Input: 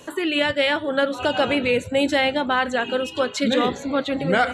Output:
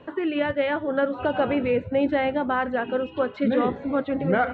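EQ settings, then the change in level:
high-frequency loss of the air 110 metres
dynamic equaliser 3,300 Hz, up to −4 dB, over −38 dBFS, Q 0.94
high-frequency loss of the air 450 metres
0.0 dB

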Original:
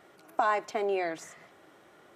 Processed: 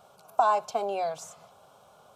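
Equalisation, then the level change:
phaser with its sweep stopped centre 790 Hz, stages 4
+5.0 dB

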